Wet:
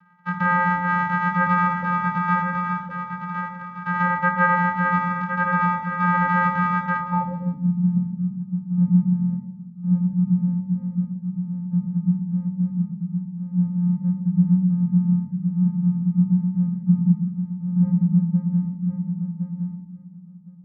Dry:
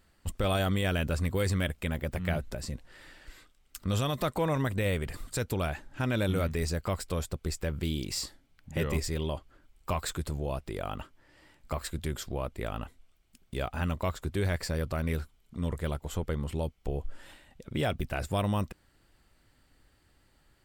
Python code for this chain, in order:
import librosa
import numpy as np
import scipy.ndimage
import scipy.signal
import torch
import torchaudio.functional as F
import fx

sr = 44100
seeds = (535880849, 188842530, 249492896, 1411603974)

p1 = fx.envelope_sharpen(x, sr, power=3.0)
p2 = fx.hum_notches(p1, sr, base_hz=50, count=4)
p3 = fx.freq_invert(p2, sr, carrier_hz=2900)
p4 = fx.sample_hold(p3, sr, seeds[0], rate_hz=1400.0, jitter_pct=0)
p5 = p3 + F.gain(torch.from_numpy(p4), -9.0).numpy()
p6 = fx.vocoder(p5, sr, bands=4, carrier='square', carrier_hz=177.0)
p7 = p6 + fx.echo_feedback(p6, sr, ms=1063, feedback_pct=15, wet_db=-6.5, dry=0)
p8 = fx.rev_fdn(p7, sr, rt60_s=0.91, lf_ratio=1.55, hf_ratio=0.45, size_ms=33.0, drr_db=-1.0)
p9 = fx.filter_sweep_lowpass(p8, sr, from_hz=1500.0, to_hz=200.0, start_s=6.98, end_s=7.72, q=3.1)
y = F.gain(torch.from_numpy(p9), -3.0).numpy()